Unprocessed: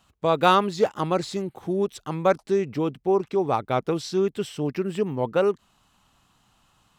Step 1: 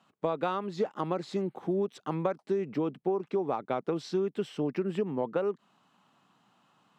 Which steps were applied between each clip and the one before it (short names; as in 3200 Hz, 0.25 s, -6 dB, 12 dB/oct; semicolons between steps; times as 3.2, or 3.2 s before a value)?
HPF 160 Hz 24 dB/oct; compressor 12:1, threshold -25 dBFS, peak gain reduction 13.5 dB; LPF 1800 Hz 6 dB/oct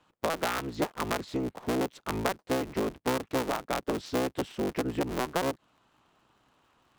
cycle switcher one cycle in 3, inverted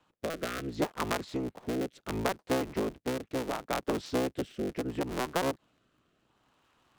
rotary speaker horn 0.7 Hz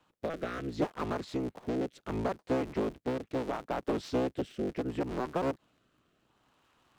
slew limiter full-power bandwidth 37 Hz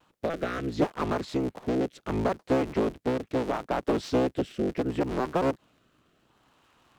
vibrato 0.83 Hz 27 cents; gain +5.5 dB